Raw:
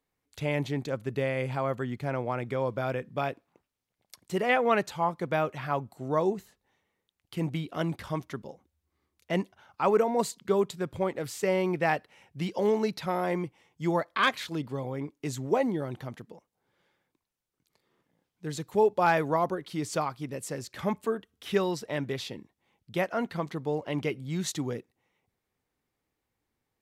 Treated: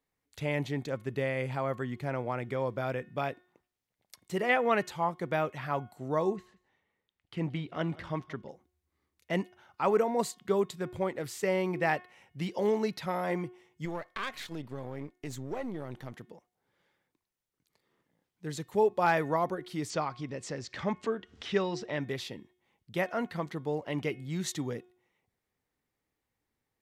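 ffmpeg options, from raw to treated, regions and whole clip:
ffmpeg -i in.wav -filter_complex "[0:a]asettb=1/sr,asplit=3[link_01][link_02][link_03];[link_01]atrim=end=6.364[link_04];[link_02]atrim=start=6.36:end=8.49,asetpts=PTS-STARTPTS,afade=type=in:duration=0.004:curve=qsin,afade=type=out:start_time=2.126:duration=0.004:curve=qsin,lowpass=2900,aemphasis=mode=production:type=50kf,aecho=1:1:178:0.0841,atrim=end_sample=93933[link_05];[link_03]atrim=start=8.486[link_06];[link_04][link_05]acrossfade=duration=0.004:curve1=hsin:curve2=qsin[link_07];[link_07][link_06]acrossfade=duration=0.004:curve1=qsin:curve2=hsin,asettb=1/sr,asplit=3[link_08][link_09][link_10];[link_08]atrim=end=13.854[link_11];[link_09]atrim=start=13.85:end=16.13,asetpts=PTS-STARTPTS,afade=type=in:duration=0.004:curve=qsin,afade=type=out:start_time=2.276:duration=0.004:curve=qsin,aeval=exprs='if(lt(val(0),0),0.447*val(0),val(0))':channel_layout=same,acompressor=threshold=-31dB:ratio=2.5:attack=3.2:release=140:knee=1:detection=peak[link_12];[link_10]atrim=start=16.126[link_13];[link_11][link_12]acrossfade=duration=0.004:curve1=hsin:curve2=qsin[link_14];[link_14][link_13]acrossfade=duration=0.004:curve1=qsin:curve2=hsin,asettb=1/sr,asplit=3[link_15][link_16][link_17];[link_15]atrim=end=19.904[link_18];[link_16]atrim=start=19.9:end=22.01,asetpts=PTS-STARTPTS,afade=type=in:duration=0.004:curve=qsin,afade=type=out:start_time=2.106:duration=0.004:curve=qsin,lowpass=frequency=6400:width=0.5412,lowpass=frequency=6400:width=1.3066,acompressor=mode=upward:threshold=-32dB:ratio=2.5:attack=3.2:release=140:knee=2.83:detection=peak[link_19];[link_17]atrim=start=22.006[link_20];[link_18][link_19]acrossfade=duration=0.004:curve1=hsin:curve2=qsin[link_21];[link_21][link_20]acrossfade=duration=0.004:curve1=qsin:curve2=hsin,equalizer=frequency=1900:width_type=o:width=0.22:gain=3.5,bandreject=frequency=362.2:width_type=h:width=4,bandreject=frequency=724.4:width_type=h:width=4,bandreject=frequency=1086.6:width_type=h:width=4,bandreject=frequency=1448.8:width_type=h:width=4,bandreject=frequency=1811:width_type=h:width=4,bandreject=frequency=2173.2:width_type=h:width=4,bandreject=frequency=2535.4:width_type=h:width=4,bandreject=frequency=2897.6:width_type=h:width=4,bandreject=frequency=3259.8:width_type=h:width=4,bandreject=frequency=3622:width_type=h:width=4,volume=-2.5dB" out.wav

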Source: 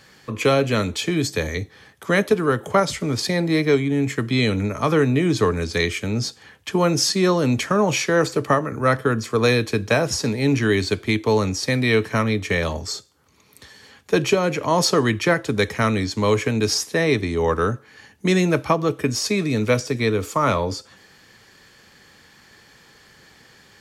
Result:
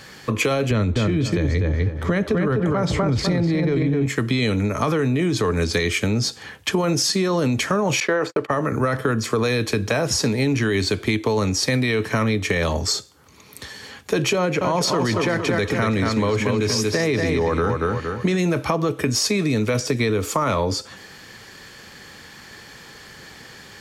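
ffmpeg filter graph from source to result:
ffmpeg -i in.wav -filter_complex "[0:a]asettb=1/sr,asplit=3[link_01][link_02][link_03];[link_01]atrim=end=0.714[link_04];[link_02]atrim=start=0.71:end=4.06,asetpts=PTS-STARTPTS,afade=type=in:duration=0.004:curve=qsin,afade=type=out:start_time=3.346:duration=0.004:curve=qsin,aemphasis=mode=reproduction:type=bsi,asplit=2[link_05][link_06];[link_06]adelay=250,lowpass=frequency=2800:poles=1,volume=-3.5dB,asplit=2[link_07][link_08];[link_08]adelay=250,lowpass=frequency=2800:poles=1,volume=0.23,asplit=2[link_09][link_10];[link_10]adelay=250,lowpass=frequency=2800:poles=1,volume=0.23[link_11];[link_05][link_07][link_09][link_11]amix=inputs=4:normalize=0,atrim=end_sample=147735[link_12];[link_03]atrim=start=4.056[link_13];[link_04][link_12]acrossfade=duration=0.004:curve1=hsin:curve2=qsin[link_14];[link_14][link_13]acrossfade=duration=0.004:curve1=qsin:curve2=hsin,asettb=1/sr,asplit=3[link_15][link_16][link_17];[link_15]atrim=end=8.004[link_18];[link_16]atrim=start=8:end=8.51,asetpts=PTS-STARTPTS,afade=type=in:duration=0.004:curve=qsin,afade=type=out:start_time=0.506:duration=0.004:curve=qsin,bass=frequency=250:gain=-12,treble=frequency=4000:gain=-14,agate=range=-57dB:threshold=-36dB:ratio=16:release=100:detection=peak[link_19];[link_17]atrim=start=8.506[link_20];[link_18][link_19]acrossfade=duration=0.004:curve1=hsin:curve2=qsin[link_21];[link_21][link_20]acrossfade=duration=0.004:curve1=qsin:curve2=hsin,asettb=1/sr,asplit=3[link_22][link_23][link_24];[link_22]atrim=end=14.384[link_25];[link_23]atrim=start=14.38:end=18.38,asetpts=PTS-STARTPTS,afade=type=in:duration=0.004:curve=qsin,afade=type=out:start_time=3.996:duration=0.004:curve=qsin,highshelf=frequency=5000:gain=-6.5,aecho=1:1:232|464|696|928:0.501|0.165|0.0546|0.018,atrim=end_sample=176400[link_26];[link_24]atrim=start=18.376[link_27];[link_25][link_26]acrossfade=duration=0.004:curve1=hsin:curve2=qsin[link_28];[link_28][link_27]acrossfade=duration=0.004:curve1=qsin:curve2=hsin,alimiter=limit=-14dB:level=0:latency=1:release=11,acompressor=threshold=-26dB:ratio=6,volume=8.5dB" out.wav

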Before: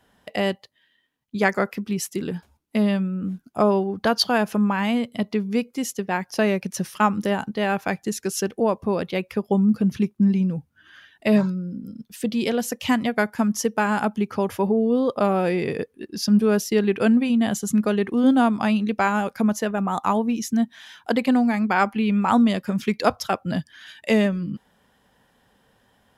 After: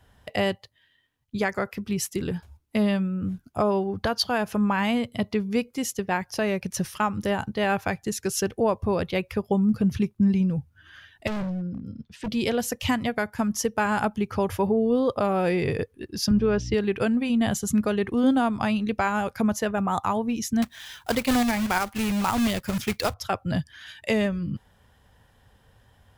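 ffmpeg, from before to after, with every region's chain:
ffmpeg -i in.wav -filter_complex "[0:a]asettb=1/sr,asplit=3[link_01][link_02][link_03];[link_01]atrim=end=11.274[link_04];[link_02]atrim=start=11.27:end=12.28,asetpts=PTS-STARTPTS,afade=type=in:duration=0.004:curve=qsin,afade=type=out:start_time=1.006:duration=0.004:curve=qsin,lowpass=4200,asoftclip=type=hard:threshold=-26dB[link_05];[link_03]atrim=start=12.276[link_06];[link_04][link_05]acrossfade=duration=0.004:curve1=hsin:curve2=qsin[link_07];[link_07][link_06]acrossfade=duration=0.004:curve1=qsin:curve2=hsin,asettb=1/sr,asplit=3[link_08][link_09][link_10];[link_08]atrim=end=16.314[link_11];[link_09]atrim=start=16.31:end=16.74,asetpts=PTS-STARTPTS,afade=type=in:duration=0.004:curve=qsin,afade=type=out:start_time=0.426:duration=0.004:curve=qsin,aeval=exprs='val(0)+0.0224*(sin(2*PI*60*n/s)+sin(2*PI*2*60*n/s)/2+sin(2*PI*3*60*n/s)/3+sin(2*PI*4*60*n/s)/4+sin(2*PI*5*60*n/s)/5)':channel_layout=same,highpass=120,equalizer=frequency=480:width_type=q:width=4:gain=3,equalizer=frequency=680:width_type=q:width=4:gain=-4,equalizer=frequency=4200:width_type=q:width=4:gain=-6,lowpass=frequency=5200:width=0.5412,lowpass=frequency=5200:width=1.3066[link_12];[link_10]atrim=start=16.736[link_13];[link_11][link_12]acrossfade=duration=0.004:curve1=hsin:curve2=qsin[link_14];[link_14][link_13]acrossfade=duration=0.004:curve1=qsin:curve2=hsin,asettb=1/sr,asplit=3[link_15][link_16][link_17];[link_15]atrim=end=20.624[link_18];[link_16]atrim=start=20.62:end=23.14,asetpts=PTS-STARTPTS,afade=type=in:duration=0.004:curve=qsin,afade=type=out:start_time=2.516:duration=0.004:curve=qsin,highshelf=frequency=4400:gain=7.5,acrusher=bits=2:mode=log:mix=0:aa=0.000001[link_19];[link_17]atrim=start=23.136[link_20];[link_18][link_19]acrossfade=duration=0.004:curve1=hsin:curve2=qsin[link_21];[link_21][link_20]acrossfade=duration=0.004:curve1=qsin:curve2=hsin,lowshelf=frequency=140:width_type=q:width=1.5:gain=11,alimiter=limit=-13dB:level=0:latency=1:release=320" out.wav

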